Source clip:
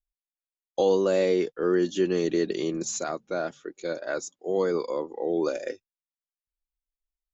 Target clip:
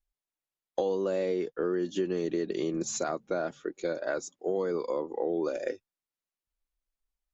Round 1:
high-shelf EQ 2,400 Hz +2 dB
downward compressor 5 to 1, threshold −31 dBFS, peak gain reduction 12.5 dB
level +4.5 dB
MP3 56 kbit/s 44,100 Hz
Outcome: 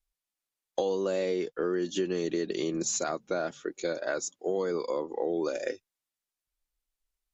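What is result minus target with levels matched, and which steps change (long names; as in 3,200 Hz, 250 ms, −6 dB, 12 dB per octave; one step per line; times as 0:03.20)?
4,000 Hz band +5.0 dB
change: high-shelf EQ 2,400 Hz −6.5 dB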